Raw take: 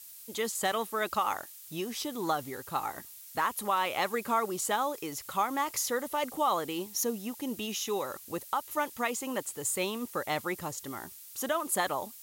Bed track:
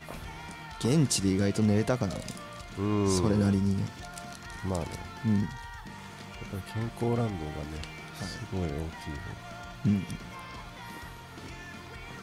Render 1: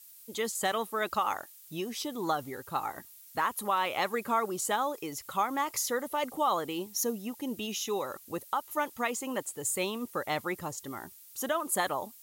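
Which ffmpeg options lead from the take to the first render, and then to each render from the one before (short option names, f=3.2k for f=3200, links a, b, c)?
-af "afftdn=nr=6:nf=-49"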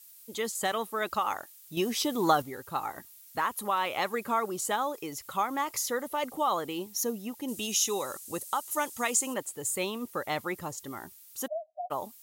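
-filter_complex "[0:a]asettb=1/sr,asplit=3[a][b][c];[a]atrim=end=7.484[d];[b]atrim=start=7.48:end=9.34,asetpts=PTS-STARTPTS,afade=t=in:d=0.004:c=qsin,afade=t=out:st=1.856:d=0.004:c=qsin,equalizer=f=8.2k:t=o:w=1.5:g=13[e];[c]atrim=start=9.336[f];[d][e]acrossfade=d=0.004:c1=hsin:c2=qsin[g];[g][f]acrossfade=d=0.004:c1=qsin:c2=hsin,asplit=3[h][i][j];[h]afade=t=out:st=11.46:d=0.02[k];[i]asuperpass=centerf=670:order=8:qfactor=5.8,afade=t=in:st=11.46:d=0.02,afade=t=out:st=11.9:d=0.02[l];[j]afade=t=in:st=11.9:d=0.02[m];[k][l][m]amix=inputs=3:normalize=0,asplit=3[n][o][p];[n]atrim=end=1.772[q];[o]atrim=start=1.768:end=2.422,asetpts=PTS-STARTPTS,volume=6.5dB[r];[p]atrim=start=2.418[s];[q][r]acrossfade=d=0.004:c1=hsin:c2=hsin[t];[t][s]acrossfade=d=0.004:c1=hsin:c2=hsin"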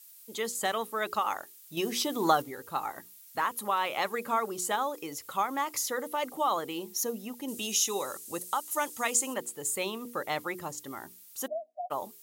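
-af "highpass=f=160:p=1,bandreject=f=60:t=h:w=6,bandreject=f=120:t=h:w=6,bandreject=f=180:t=h:w=6,bandreject=f=240:t=h:w=6,bandreject=f=300:t=h:w=6,bandreject=f=360:t=h:w=6,bandreject=f=420:t=h:w=6,bandreject=f=480:t=h:w=6"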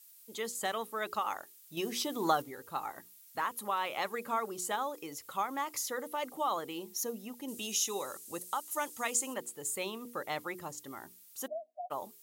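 -af "volume=-4.5dB"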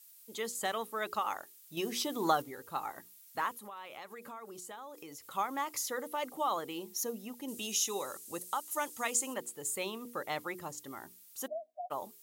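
-filter_complex "[0:a]asettb=1/sr,asplit=3[a][b][c];[a]atrim=end=3.554[d];[b]atrim=start=3.55:end=5.31,asetpts=PTS-STARTPTS,afade=t=in:d=0.004:c=qsin,afade=t=out:st=1.756:d=0.004:c=qsin,acompressor=threshold=-45dB:ratio=4:attack=3.2:release=140:knee=1:detection=peak[e];[c]atrim=start=5.306[f];[d][e]acrossfade=d=0.004:c1=hsin:c2=qsin[g];[g][f]acrossfade=d=0.004:c1=qsin:c2=hsin"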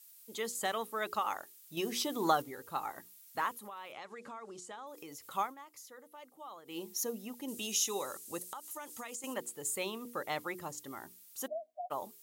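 -filter_complex "[0:a]asettb=1/sr,asplit=3[a][b][c];[a]atrim=end=3.924[d];[b]atrim=start=3.92:end=4.87,asetpts=PTS-STARTPTS,afade=t=in:d=0.004:c=qsin,afade=t=out:st=0.946:d=0.004:c=qsin,lowpass=f=8.2k:w=0.5412,lowpass=f=8.2k:w=1.3066[e];[c]atrim=start=4.866[f];[d][e]acrossfade=d=0.004:c1=hsin:c2=qsin[g];[g][f]acrossfade=d=0.004:c1=qsin:c2=hsin,asettb=1/sr,asplit=3[h][i][j];[h]atrim=end=8.454[k];[i]atrim=start=8.45:end=9.24,asetpts=PTS-STARTPTS,afade=t=in:d=0.004:c=qsin,afade=t=out:st=0.786:d=0.004:c=qsin,acompressor=threshold=-40dB:ratio=6:attack=3.2:release=140:knee=1:detection=peak[l];[j]atrim=start=9.236[m];[k][l]acrossfade=d=0.004:c1=hsin:c2=qsin[n];[n][m]acrossfade=d=0.004:c1=qsin:c2=hsin,asplit=3[o][p][q];[o]atrim=end=5.55,asetpts=PTS-STARTPTS,afade=t=out:st=5.42:d=0.13:silence=0.158489[r];[p]atrim=start=5.55:end=6.65,asetpts=PTS-STARTPTS,volume=-16dB[s];[q]atrim=start=6.65,asetpts=PTS-STARTPTS,afade=t=in:d=0.13:silence=0.158489[t];[r][s][t]concat=n=3:v=0:a=1"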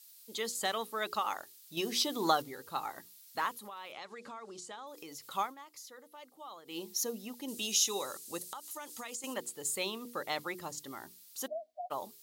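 -af "equalizer=f=4.3k:w=1.5:g=7.5,bandreject=f=50:t=h:w=6,bandreject=f=100:t=h:w=6,bandreject=f=150:t=h:w=6"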